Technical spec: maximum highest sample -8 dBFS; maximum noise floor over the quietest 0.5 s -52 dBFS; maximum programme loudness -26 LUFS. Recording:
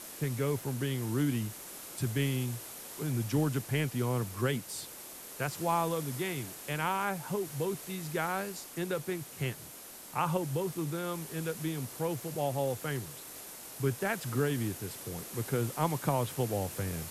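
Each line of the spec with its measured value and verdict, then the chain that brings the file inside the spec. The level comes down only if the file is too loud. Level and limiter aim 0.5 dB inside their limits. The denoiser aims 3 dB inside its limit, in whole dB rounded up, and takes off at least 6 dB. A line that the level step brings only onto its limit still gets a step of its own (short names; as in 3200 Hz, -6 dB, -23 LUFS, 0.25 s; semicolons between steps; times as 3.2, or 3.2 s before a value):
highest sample -16.5 dBFS: OK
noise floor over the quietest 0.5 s -48 dBFS: fail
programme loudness -34.0 LUFS: OK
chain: denoiser 7 dB, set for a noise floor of -48 dBFS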